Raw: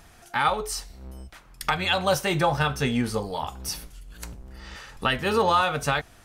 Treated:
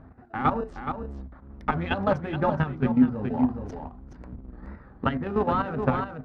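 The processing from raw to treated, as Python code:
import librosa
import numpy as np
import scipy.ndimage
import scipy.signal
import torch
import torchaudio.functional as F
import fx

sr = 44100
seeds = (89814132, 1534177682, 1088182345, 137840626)

p1 = fx.wiener(x, sr, points=15)
p2 = scipy.signal.sosfilt(scipy.signal.butter(2, 64.0, 'highpass', fs=sr, output='sos'), p1)
p3 = fx.wow_flutter(p2, sr, seeds[0], rate_hz=2.1, depth_cents=120.0)
p4 = fx.sample_hold(p3, sr, seeds[1], rate_hz=1100.0, jitter_pct=0)
p5 = p3 + (p4 * 10.0 ** (-11.0 / 20.0))
p6 = fx.level_steps(p5, sr, step_db=11)
p7 = scipy.signal.sosfilt(scipy.signal.butter(2, 1700.0, 'lowpass', fs=sr, output='sos'), p6)
p8 = fx.peak_eq(p7, sr, hz=250.0, db=11.0, octaves=0.28)
p9 = fx.hum_notches(p8, sr, base_hz=60, count=4)
p10 = p9 + 10.0 ** (-8.0 / 20.0) * np.pad(p9, (int(422 * sr / 1000.0), 0))[:len(p9)]
p11 = fx.rider(p10, sr, range_db=3, speed_s=0.5)
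y = fx.low_shelf(p11, sr, hz=170.0, db=5.5)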